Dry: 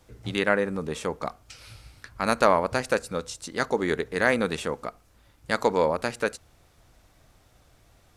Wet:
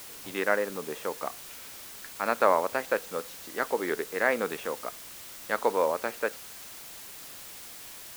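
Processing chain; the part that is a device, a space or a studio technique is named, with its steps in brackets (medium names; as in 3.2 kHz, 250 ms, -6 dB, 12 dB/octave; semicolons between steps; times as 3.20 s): wax cylinder (band-pass 340–2400 Hz; wow and flutter; white noise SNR 13 dB); trim -2 dB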